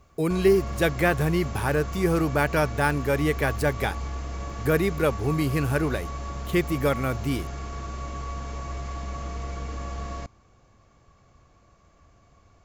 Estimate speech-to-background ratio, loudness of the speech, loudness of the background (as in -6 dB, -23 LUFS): 9.5 dB, -25.0 LUFS, -34.5 LUFS